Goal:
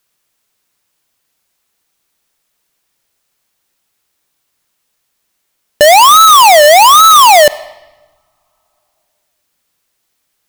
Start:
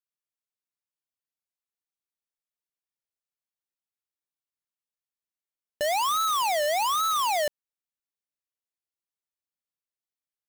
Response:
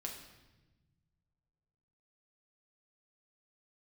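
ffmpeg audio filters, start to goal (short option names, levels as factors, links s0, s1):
-filter_complex "[0:a]asplit=2[s0][s1];[s1]equalizer=f=170:w=0.73:g=-10[s2];[1:a]atrim=start_sample=2205[s3];[s2][s3]afir=irnorm=-1:irlink=0,volume=0.15[s4];[s0][s4]amix=inputs=2:normalize=0,alimiter=level_in=26.6:limit=0.891:release=50:level=0:latency=1,volume=0.891"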